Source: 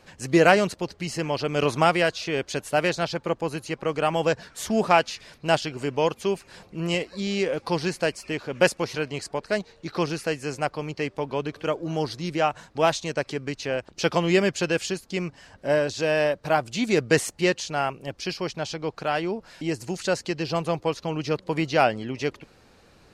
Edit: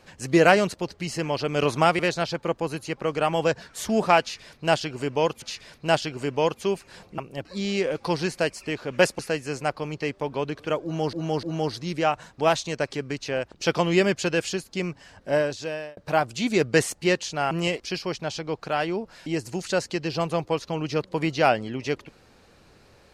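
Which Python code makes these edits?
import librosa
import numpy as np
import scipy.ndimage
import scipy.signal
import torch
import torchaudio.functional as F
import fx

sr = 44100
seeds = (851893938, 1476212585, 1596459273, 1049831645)

y = fx.edit(x, sr, fx.cut(start_s=1.99, length_s=0.81),
    fx.repeat(start_s=5.02, length_s=1.21, count=2),
    fx.swap(start_s=6.78, length_s=0.29, other_s=17.88, other_length_s=0.27),
    fx.cut(start_s=8.81, length_s=1.35),
    fx.repeat(start_s=11.8, length_s=0.3, count=3),
    fx.fade_out_span(start_s=15.71, length_s=0.63), tone=tone)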